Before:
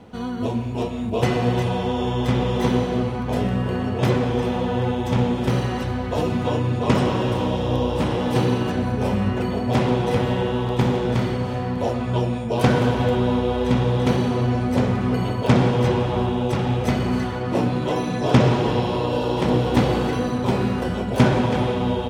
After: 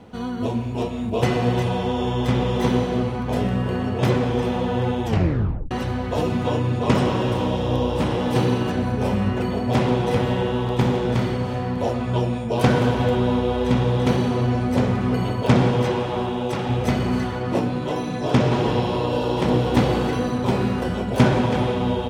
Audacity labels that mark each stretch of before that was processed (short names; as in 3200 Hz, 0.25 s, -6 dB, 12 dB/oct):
5.050000	5.050000	tape stop 0.66 s
15.820000	16.700000	low shelf 160 Hz -10 dB
17.590000	18.520000	resonator 50 Hz, decay 0.22 s, mix 50%